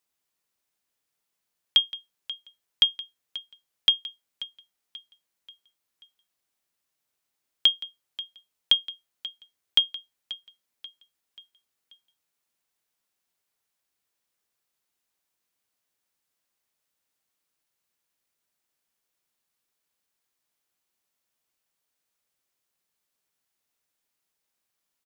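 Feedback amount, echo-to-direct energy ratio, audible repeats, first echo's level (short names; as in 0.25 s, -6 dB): 46%, -15.0 dB, 3, -16.0 dB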